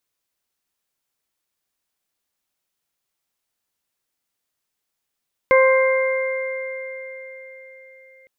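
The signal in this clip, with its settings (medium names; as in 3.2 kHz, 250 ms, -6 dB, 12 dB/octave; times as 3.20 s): additive tone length 2.76 s, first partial 525 Hz, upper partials -7/-14/-6 dB, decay 4.10 s, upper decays 2.41/3.51/4.98 s, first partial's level -11 dB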